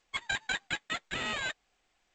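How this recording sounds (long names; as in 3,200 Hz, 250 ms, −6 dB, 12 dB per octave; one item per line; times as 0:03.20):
aliases and images of a low sample rate 5,500 Hz, jitter 0%
G.722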